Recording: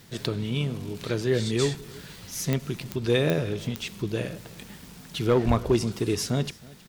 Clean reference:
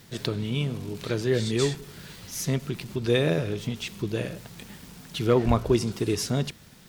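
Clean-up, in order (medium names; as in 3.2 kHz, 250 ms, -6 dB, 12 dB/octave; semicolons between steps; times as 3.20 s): clip repair -13 dBFS; de-click; inverse comb 318 ms -22.5 dB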